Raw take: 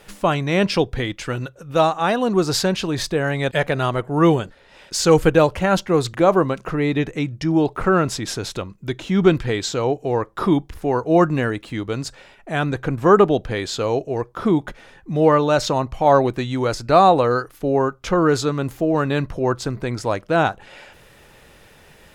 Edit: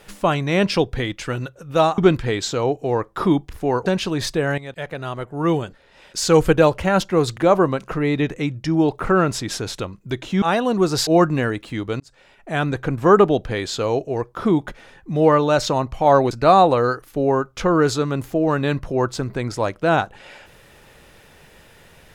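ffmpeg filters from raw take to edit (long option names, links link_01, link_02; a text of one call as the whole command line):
ffmpeg -i in.wav -filter_complex "[0:a]asplit=8[link_01][link_02][link_03][link_04][link_05][link_06][link_07][link_08];[link_01]atrim=end=1.982[link_09];[link_02]atrim=start=9.188:end=11.072[link_10];[link_03]atrim=start=2.628:end=3.35,asetpts=PTS-STARTPTS,afade=type=out:start_time=0.718:duration=0.004:curve=hsin:silence=0.199526[link_11];[link_04]atrim=start=3.35:end=9.192,asetpts=PTS-STARTPTS,afade=type=in:duration=1.88:silence=0.199526[link_12];[link_05]atrim=start=1.978:end=2.632[link_13];[link_06]atrim=start=11.068:end=12,asetpts=PTS-STARTPTS,afade=type=out:start_time=0.928:duration=0.004:curve=hsin[link_14];[link_07]atrim=start=12:end=16.312,asetpts=PTS-STARTPTS,afade=type=in:duration=0.51[link_15];[link_08]atrim=start=16.778[link_16];[link_09][link_10]acrossfade=duration=0.004:curve1=hsin:curve2=hsin[link_17];[link_11][link_12]concat=n=2:v=0:a=1[link_18];[link_17][link_18]acrossfade=duration=0.004:curve1=hsin:curve2=hsin[link_19];[link_19][link_13]acrossfade=duration=0.004:curve1=hsin:curve2=hsin[link_20];[link_14][link_15]concat=n=2:v=0:a=1[link_21];[link_20][link_21]acrossfade=duration=0.004:curve1=hsin:curve2=hsin[link_22];[link_22][link_16]acrossfade=duration=0.004:curve1=hsin:curve2=hsin" out.wav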